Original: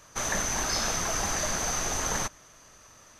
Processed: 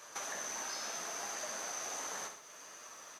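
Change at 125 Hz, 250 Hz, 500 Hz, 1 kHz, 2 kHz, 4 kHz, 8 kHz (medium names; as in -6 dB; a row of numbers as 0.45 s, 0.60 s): -28.5 dB, -18.0 dB, -11.5 dB, -11.0 dB, -11.0 dB, -11.5 dB, -11.0 dB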